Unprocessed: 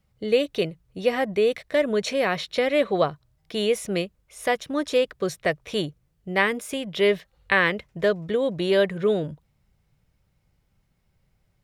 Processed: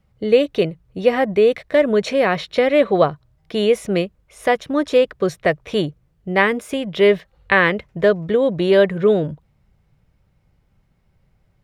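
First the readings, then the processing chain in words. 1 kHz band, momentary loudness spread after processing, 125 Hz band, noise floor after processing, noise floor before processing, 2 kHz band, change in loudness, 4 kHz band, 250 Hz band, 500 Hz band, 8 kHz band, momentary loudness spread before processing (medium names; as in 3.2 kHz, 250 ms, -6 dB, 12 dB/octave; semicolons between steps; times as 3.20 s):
+6.5 dB, 8 LU, +7.0 dB, -63 dBFS, -69 dBFS, +4.5 dB, +6.0 dB, +2.0 dB, +7.0 dB, +7.0 dB, no reading, 8 LU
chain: treble shelf 3.3 kHz -10 dB; trim +7 dB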